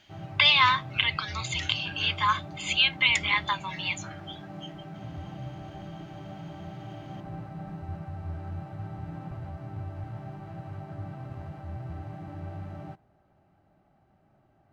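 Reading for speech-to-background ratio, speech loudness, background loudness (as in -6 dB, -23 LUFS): 16.0 dB, -24.5 LUFS, -40.5 LUFS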